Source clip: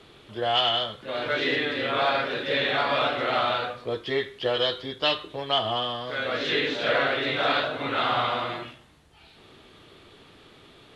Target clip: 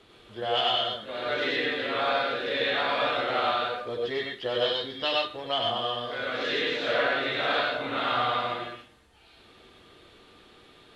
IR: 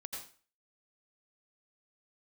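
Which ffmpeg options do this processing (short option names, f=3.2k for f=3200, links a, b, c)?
-filter_complex "[0:a]equalizer=f=150:t=o:w=0.2:g=-12.5[a];[1:a]atrim=start_sample=2205,afade=t=out:st=0.17:d=0.01,atrim=end_sample=7938,asetrate=40131,aresample=44100[b];[a][b]afir=irnorm=-1:irlink=0"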